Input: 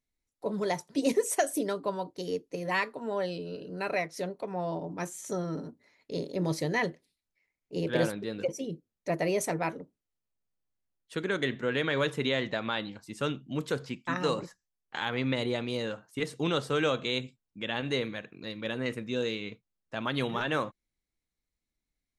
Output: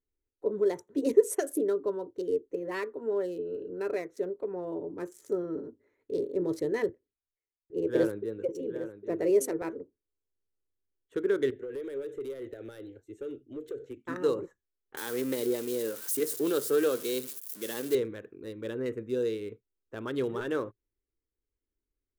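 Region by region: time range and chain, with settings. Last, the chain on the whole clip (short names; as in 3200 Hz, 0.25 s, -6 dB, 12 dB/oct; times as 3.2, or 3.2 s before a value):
6.89–9.62 echo 0.806 s -8 dB + three-band expander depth 40%
11.5–13.97 fixed phaser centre 440 Hz, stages 4 + compressor 12:1, threshold -33 dBFS + hard clip -36 dBFS
14.97–17.95 switching spikes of -24 dBFS + HPF 160 Hz 24 dB/oct + Doppler distortion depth 0.12 ms
whole clip: Wiener smoothing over 9 samples; EQ curve 110 Hz 0 dB, 160 Hz -13 dB, 410 Hz +8 dB, 700 Hz -11 dB, 1500 Hz -5 dB, 2400 Hz -12 dB, 12000 Hz 0 dB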